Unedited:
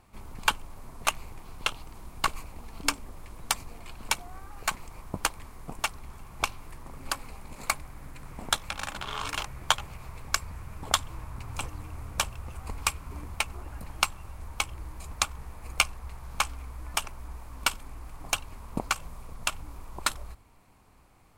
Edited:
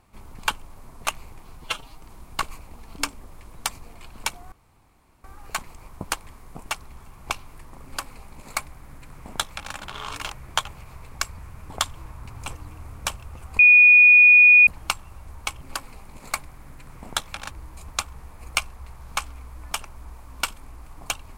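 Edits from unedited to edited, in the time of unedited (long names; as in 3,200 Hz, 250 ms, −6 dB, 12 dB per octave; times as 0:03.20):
0:01.57–0:01.87: time-stretch 1.5×
0:04.37: splice in room tone 0.72 s
0:06.97–0:08.87: duplicate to 0:14.74
0:12.72–0:13.80: beep over 2,460 Hz −8.5 dBFS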